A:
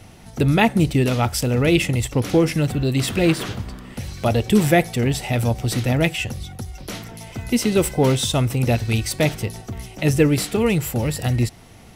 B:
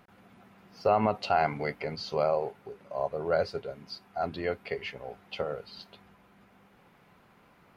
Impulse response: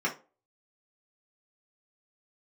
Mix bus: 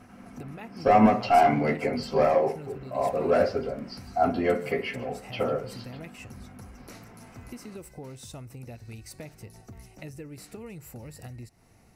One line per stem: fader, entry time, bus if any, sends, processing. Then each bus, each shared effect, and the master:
-13.5 dB, 0.00 s, no send, no echo send, bell 3300 Hz -13.5 dB 0.29 oct; compressor 6:1, threshold -26 dBFS, peak gain reduction 14.5 dB
0.0 dB, 0.00 s, send -3 dB, echo send -16 dB, hard clip -20.5 dBFS, distortion -14 dB; bell 250 Hz +9 dB 0.23 oct; notch 3700 Hz, Q 12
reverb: on, RT60 0.35 s, pre-delay 3 ms
echo: echo 0.153 s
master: dry

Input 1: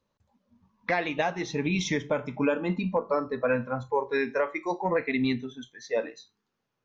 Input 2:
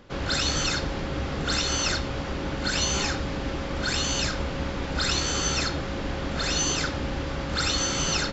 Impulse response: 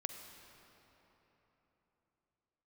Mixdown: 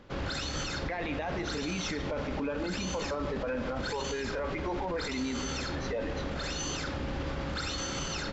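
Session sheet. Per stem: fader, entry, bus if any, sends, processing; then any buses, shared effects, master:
+1.0 dB, 0.00 s, send -3.5 dB, Chebyshev high-pass 240 Hz, order 2
-2.5 dB, 0.00 s, no send, dry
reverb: on, RT60 3.8 s, pre-delay 41 ms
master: high shelf 5000 Hz -6.5 dB; limiter -25.5 dBFS, peak gain reduction 16 dB

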